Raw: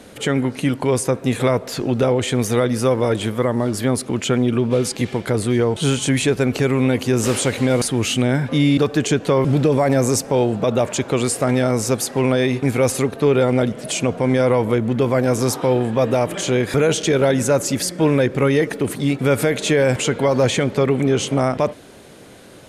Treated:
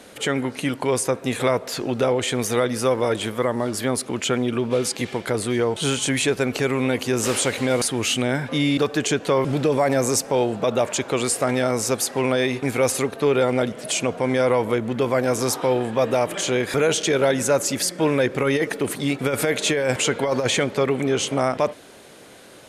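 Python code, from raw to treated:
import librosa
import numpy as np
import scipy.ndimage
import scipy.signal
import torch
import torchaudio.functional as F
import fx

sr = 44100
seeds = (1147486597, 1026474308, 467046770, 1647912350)

y = fx.low_shelf(x, sr, hz=280.0, db=-10.0)
y = fx.over_compress(y, sr, threshold_db=-19.0, ratio=-0.5, at=(18.24, 20.65))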